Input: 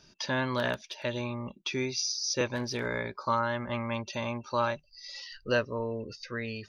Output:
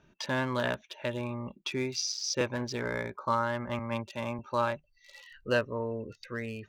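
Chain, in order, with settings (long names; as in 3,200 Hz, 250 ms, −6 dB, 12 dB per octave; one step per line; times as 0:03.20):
adaptive Wiener filter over 9 samples
harmonic generator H 7 −41 dB, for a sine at −13.5 dBFS
0:03.79–0:04.39: multiband upward and downward expander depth 100%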